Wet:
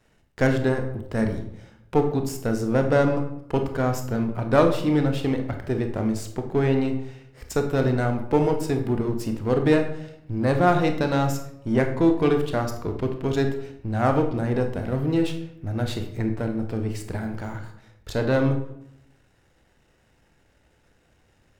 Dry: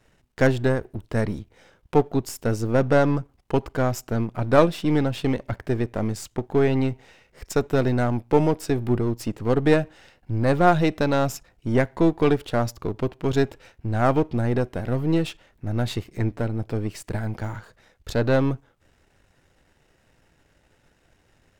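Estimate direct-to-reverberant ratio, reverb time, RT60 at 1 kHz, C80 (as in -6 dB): 5.0 dB, 0.75 s, 0.70 s, 11.5 dB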